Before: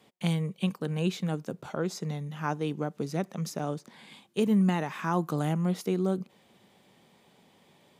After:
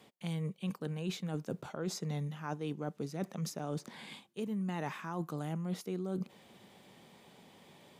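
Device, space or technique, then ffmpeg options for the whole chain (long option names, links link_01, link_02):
compression on the reversed sound: -af "areverse,acompressor=threshold=-36dB:ratio=12,areverse,volume=2.5dB"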